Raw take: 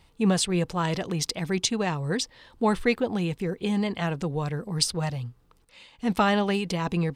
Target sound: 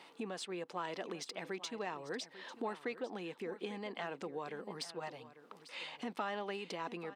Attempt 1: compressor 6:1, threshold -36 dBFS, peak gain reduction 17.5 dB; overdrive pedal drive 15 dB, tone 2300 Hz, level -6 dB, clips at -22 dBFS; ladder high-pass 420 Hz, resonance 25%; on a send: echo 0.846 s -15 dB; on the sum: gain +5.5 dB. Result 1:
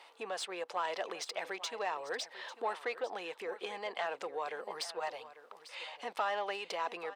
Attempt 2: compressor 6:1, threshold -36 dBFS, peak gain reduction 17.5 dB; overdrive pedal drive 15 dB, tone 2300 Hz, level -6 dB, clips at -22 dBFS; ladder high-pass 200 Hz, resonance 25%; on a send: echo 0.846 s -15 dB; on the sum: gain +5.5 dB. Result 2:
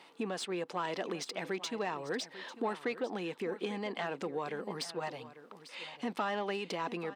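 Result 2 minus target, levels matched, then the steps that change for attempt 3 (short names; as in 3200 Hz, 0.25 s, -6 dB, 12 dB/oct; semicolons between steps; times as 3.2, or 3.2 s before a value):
compressor: peak gain reduction -6 dB
change: compressor 6:1, threshold -43.5 dBFS, peak gain reduction 23.5 dB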